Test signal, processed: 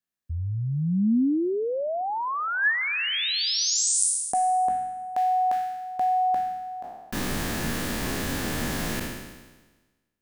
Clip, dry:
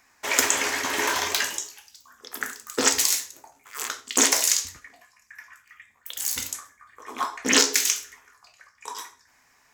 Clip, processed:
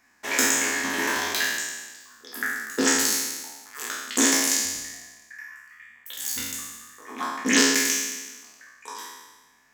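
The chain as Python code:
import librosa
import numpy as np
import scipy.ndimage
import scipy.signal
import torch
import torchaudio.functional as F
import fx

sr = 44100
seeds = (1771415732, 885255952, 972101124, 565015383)

y = fx.spec_trails(x, sr, decay_s=1.27)
y = fx.small_body(y, sr, hz=(230.0, 1700.0), ring_ms=20, db=9)
y = y * librosa.db_to_amplitude(-6.0)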